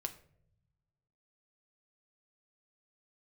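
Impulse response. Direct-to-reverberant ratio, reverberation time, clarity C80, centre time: 6.5 dB, not exponential, 17.5 dB, 7 ms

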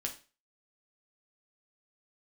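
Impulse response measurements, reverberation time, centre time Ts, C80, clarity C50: 0.35 s, 12 ms, 17.0 dB, 11.5 dB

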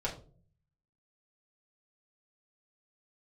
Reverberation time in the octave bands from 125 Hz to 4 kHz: 0.95, 0.75, 0.55, 0.35, 0.25, 0.25 s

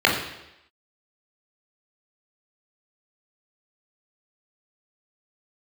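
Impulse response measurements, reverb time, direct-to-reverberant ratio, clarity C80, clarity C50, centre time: 0.85 s, -3.0 dB, 7.5 dB, 4.5 dB, 39 ms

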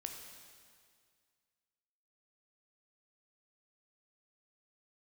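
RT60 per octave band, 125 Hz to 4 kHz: 2.1, 2.1, 2.0, 2.0, 2.0, 1.9 s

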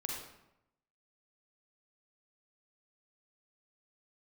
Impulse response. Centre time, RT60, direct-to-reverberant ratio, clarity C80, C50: 56 ms, 0.85 s, -1.5 dB, 4.0 dB, 0.5 dB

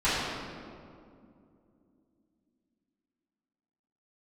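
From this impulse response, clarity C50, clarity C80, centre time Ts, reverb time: -2.5 dB, -0.5 dB, 0.131 s, 2.5 s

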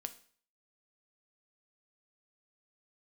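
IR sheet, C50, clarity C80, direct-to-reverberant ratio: 15.0 dB, 19.5 dB, 9.0 dB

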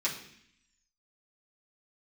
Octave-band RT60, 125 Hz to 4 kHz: 0.85, 0.95, 0.65, 0.65, 0.90, 0.85 s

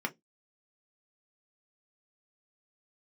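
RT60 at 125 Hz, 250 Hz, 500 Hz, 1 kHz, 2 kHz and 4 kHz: 0.25, 0.25, 0.20, 0.10, 0.10, 0.15 s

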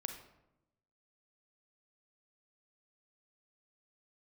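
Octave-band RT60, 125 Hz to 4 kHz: 1.3, 1.2, 0.95, 0.85, 0.65, 0.50 s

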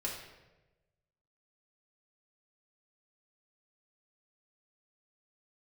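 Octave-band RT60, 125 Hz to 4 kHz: 1.5, 1.2, 1.3, 0.95, 0.95, 0.75 s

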